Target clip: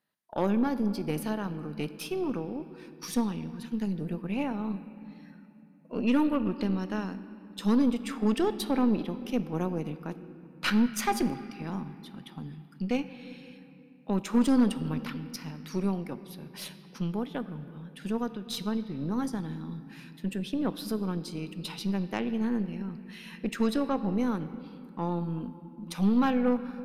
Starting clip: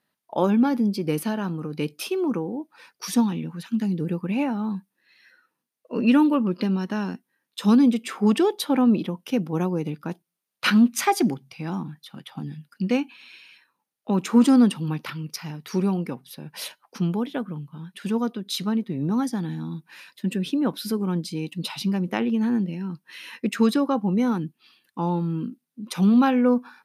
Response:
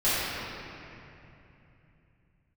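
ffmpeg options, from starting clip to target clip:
-filter_complex "[0:a]asplit=2[a][b];[1:a]atrim=start_sample=2205[c];[b][c]afir=irnorm=-1:irlink=0,volume=-25.5dB[d];[a][d]amix=inputs=2:normalize=0,aeval=exprs='0.473*(cos(1*acos(clip(val(0)/0.473,-1,1)))-cos(1*PI/2))+0.0335*(cos(6*acos(clip(val(0)/0.473,-1,1)))-cos(6*PI/2))':c=same,volume=-7.5dB"

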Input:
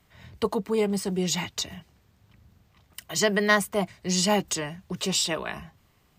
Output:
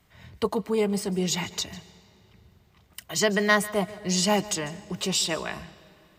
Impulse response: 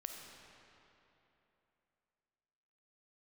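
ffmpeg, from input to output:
-filter_complex "[0:a]asplit=2[a][b];[1:a]atrim=start_sample=2205,adelay=148[c];[b][c]afir=irnorm=-1:irlink=0,volume=-14.5dB[d];[a][d]amix=inputs=2:normalize=0"

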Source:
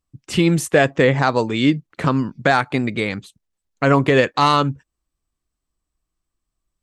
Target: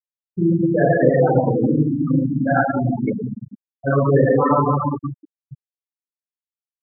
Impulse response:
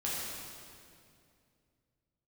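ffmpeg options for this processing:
-filter_complex "[1:a]atrim=start_sample=2205,asetrate=41013,aresample=44100[a];[0:a][a]afir=irnorm=-1:irlink=0,afftfilt=real='re*gte(hypot(re,im),0.794)':imag='im*gte(hypot(re,im),0.794)':win_size=1024:overlap=0.75,volume=-4.5dB"

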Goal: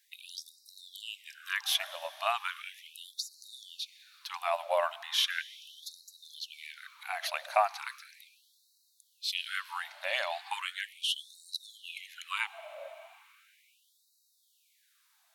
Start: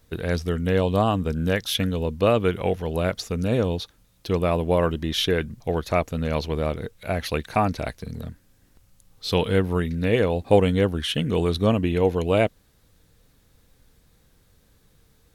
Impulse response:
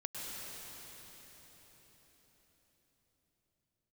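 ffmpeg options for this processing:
-filter_complex "[0:a]asettb=1/sr,asplit=3[a][b][c];[a]atrim=end=10.084[d];[b]atrim=start=10.08:end=10.48,asetpts=PTS-STARTPTS,afade=t=in:d=0.004:c=qsin,afade=t=out:st=0.396:d=0.004:c=qsin,equalizer=f=4.6k:t=o:w=0.59:g=13[e];[c]atrim=start=10.476[f];[d][e]acrossfade=d=0.004:c1=hsin:c2=qsin[g];[g][f]acrossfade=d=0.004:c1=qsin:c2=hsin,asplit=2[h][i];[1:a]atrim=start_sample=2205[j];[i][j]afir=irnorm=-1:irlink=0,volume=-14.5dB[k];[h][k]amix=inputs=2:normalize=0,afftfilt=real='re*gte(b*sr/1024,550*pow(3800/550,0.5+0.5*sin(2*PI*0.37*pts/sr)))':imag='im*gte(b*sr/1024,550*pow(3800/550,0.5+0.5*sin(2*PI*0.37*pts/sr)))':win_size=1024:overlap=0.75,volume=-4dB"

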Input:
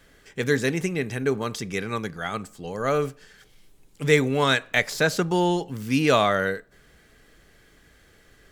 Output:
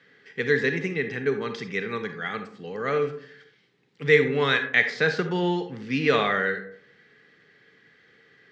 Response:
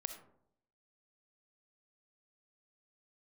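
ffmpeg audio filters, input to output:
-filter_complex "[0:a]highpass=f=130:w=0.5412,highpass=f=130:w=1.3066,equalizer=f=310:t=q:w=4:g=-4,equalizer=f=450:t=q:w=4:g=5,equalizer=f=630:t=q:w=4:g=-9,equalizer=f=930:t=q:w=4:g=-4,equalizer=f=1.9k:t=q:w=4:g=8,lowpass=f=4.7k:w=0.5412,lowpass=f=4.7k:w=1.3066[a];[1:a]atrim=start_sample=2205,asetrate=57330,aresample=44100[b];[a][b]afir=irnorm=-1:irlink=0,volume=2dB"

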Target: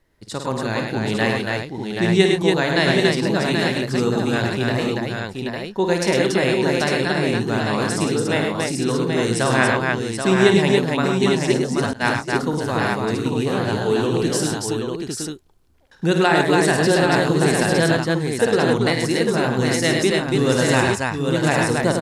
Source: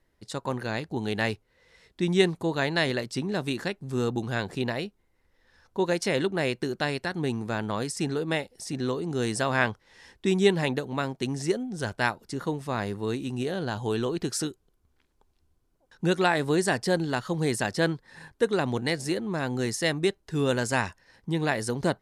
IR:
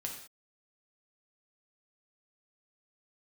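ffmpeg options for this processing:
-filter_complex "[0:a]aecho=1:1:53|104|128|283|781|852:0.422|0.562|0.251|0.708|0.501|0.562,asettb=1/sr,asplit=3[a][b][c];[a]atrim=end=11.934[d];[b]atrim=start=11.93:end=12.33,asetpts=PTS-STARTPTS,afade=t=in:d=0.004:c=qsin,afade=t=out:st=0.396:d=0.004:c=qsin,agate=range=-33dB:threshold=-22dB:ratio=3:detection=peak[e];[c]atrim=start=12.326[f];[d][e]acrossfade=d=0.004:c1=hsin:c2=qsin[g];[g][f]acrossfade=d=0.004:c1=qsin:c2=hsin,volume=5dB"

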